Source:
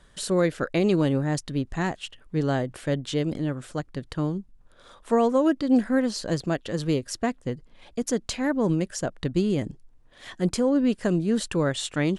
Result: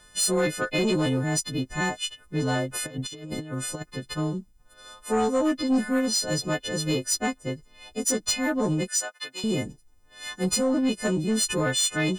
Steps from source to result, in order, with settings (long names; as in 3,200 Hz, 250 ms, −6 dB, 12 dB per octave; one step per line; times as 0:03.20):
every partial snapped to a pitch grid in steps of 3 semitones
soft clipping −16 dBFS, distortion −18 dB
0:02.71–0:03.86: compressor whose output falls as the input rises −32 dBFS, ratio −0.5
0:08.88–0:09.44: high-pass filter 990 Hz 12 dB per octave